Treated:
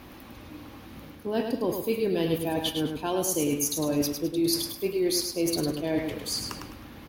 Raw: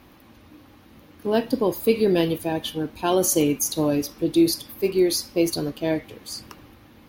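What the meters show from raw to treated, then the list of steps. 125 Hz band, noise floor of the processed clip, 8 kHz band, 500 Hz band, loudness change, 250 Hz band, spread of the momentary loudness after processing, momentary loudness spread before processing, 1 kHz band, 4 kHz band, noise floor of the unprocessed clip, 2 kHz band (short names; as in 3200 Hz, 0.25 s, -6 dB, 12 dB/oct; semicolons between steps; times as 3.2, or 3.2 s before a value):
-3.5 dB, -47 dBFS, -3.0 dB, -5.5 dB, -5.0 dB, -5.0 dB, 19 LU, 9 LU, -5.0 dB, -1.0 dB, -51 dBFS, -4.0 dB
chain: reverse; compressor 5:1, threshold -30 dBFS, peak gain reduction 15 dB; reverse; feedback echo 0.104 s, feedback 32%, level -6 dB; gain +4.5 dB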